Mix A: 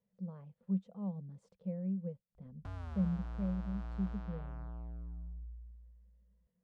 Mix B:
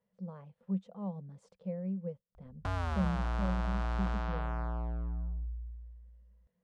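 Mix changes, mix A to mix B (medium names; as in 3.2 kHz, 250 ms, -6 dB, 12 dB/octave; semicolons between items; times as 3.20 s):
background +8.5 dB; master: add FFT filter 220 Hz 0 dB, 520 Hz +5 dB, 870 Hz +7 dB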